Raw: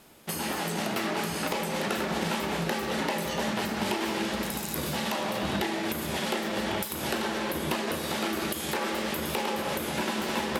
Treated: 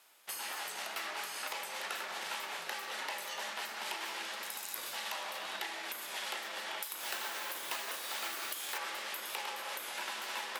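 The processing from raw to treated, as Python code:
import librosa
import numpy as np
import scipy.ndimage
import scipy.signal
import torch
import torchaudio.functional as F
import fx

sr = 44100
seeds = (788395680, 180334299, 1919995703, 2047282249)

y = fx.mod_noise(x, sr, seeds[0], snr_db=10, at=(6.99, 8.78))
y = scipy.signal.sosfilt(scipy.signal.butter(2, 950.0, 'highpass', fs=sr, output='sos'), y)
y = y * 10.0 ** (-6.0 / 20.0)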